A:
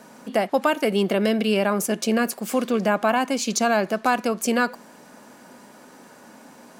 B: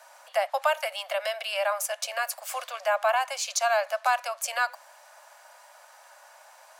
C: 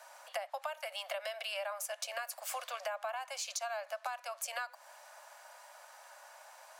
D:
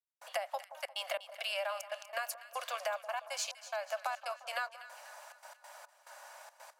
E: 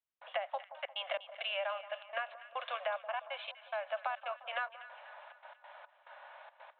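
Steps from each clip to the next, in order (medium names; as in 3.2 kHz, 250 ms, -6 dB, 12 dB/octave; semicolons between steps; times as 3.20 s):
steep high-pass 570 Hz 96 dB/octave; trim -2.5 dB
compression 12:1, threshold -33 dBFS, peak gain reduction 15 dB; trim -2.5 dB
trance gate "..xxxx.x.xx" 141 bpm -60 dB; two-band feedback delay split 1.3 kHz, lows 176 ms, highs 245 ms, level -14 dB; trim +2.5 dB
resampled via 8 kHz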